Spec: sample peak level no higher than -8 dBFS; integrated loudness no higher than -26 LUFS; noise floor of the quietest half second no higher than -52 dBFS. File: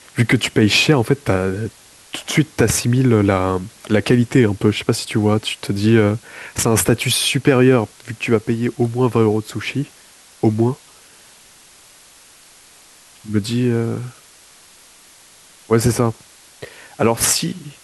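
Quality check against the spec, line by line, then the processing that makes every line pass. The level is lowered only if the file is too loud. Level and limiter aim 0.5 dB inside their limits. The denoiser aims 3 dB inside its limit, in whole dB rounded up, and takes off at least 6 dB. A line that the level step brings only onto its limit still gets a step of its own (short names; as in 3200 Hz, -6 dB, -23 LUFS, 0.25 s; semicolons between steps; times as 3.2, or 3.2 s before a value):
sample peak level -2.5 dBFS: fail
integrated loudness -17.5 LUFS: fail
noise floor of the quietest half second -47 dBFS: fail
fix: gain -9 dB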